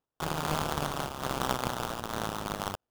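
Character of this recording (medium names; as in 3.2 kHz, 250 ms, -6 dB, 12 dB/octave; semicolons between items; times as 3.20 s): aliases and images of a low sample rate 2.2 kHz, jitter 20%; random flutter of the level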